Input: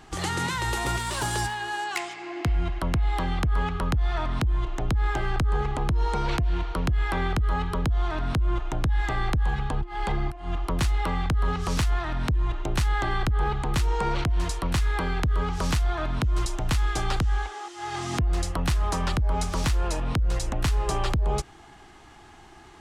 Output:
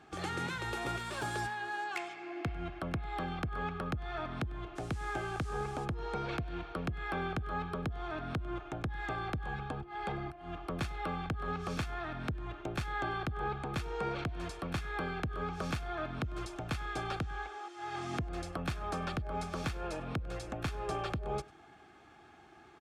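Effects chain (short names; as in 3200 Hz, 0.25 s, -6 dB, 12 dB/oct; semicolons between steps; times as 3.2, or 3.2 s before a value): HPF 54 Hz; tone controls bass -2 dB, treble -9 dB; notch comb 980 Hz; 4.75–5.84 band noise 740–9100 Hz -53 dBFS; echo 99 ms -23 dB; gain -6 dB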